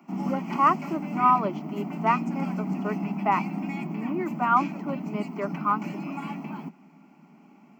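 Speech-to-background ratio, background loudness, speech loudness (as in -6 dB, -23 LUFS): 6.0 dB, -33.0 LUFS, -27.0 LUFS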